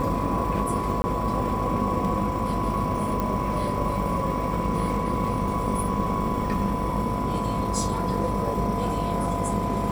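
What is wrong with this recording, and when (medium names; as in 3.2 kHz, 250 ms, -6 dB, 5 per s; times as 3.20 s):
buzz 50 Hz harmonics 25 -31 dBFS
whine 1 kHz -30 dBFS
1.02–1.04 s: dropout 20 ms
3.20 s: pop -14 dBFS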